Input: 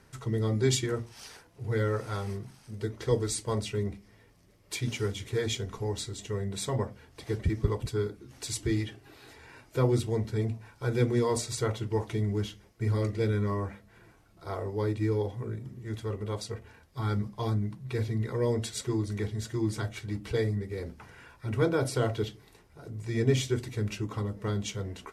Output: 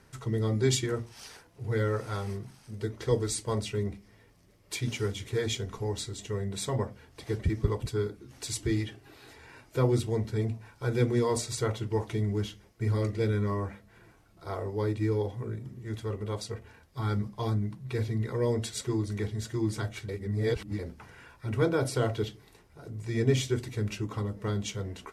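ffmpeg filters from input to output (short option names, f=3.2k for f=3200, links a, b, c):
-filter_complex "[0:a]asplit=3[a][b][c];[a]atrim=end=20.092[d];[b]atrim=start=20.088:end=20.792,asetpts=PTS-STARTPTS,areverse[e];[c]atrim=start=20.788[f];[d][e]acrossfade=d=0.004:c1=hsin:c2=hsin[g];[g][f]acrossfade=d=0.004:c1=hsin:c2=hsin"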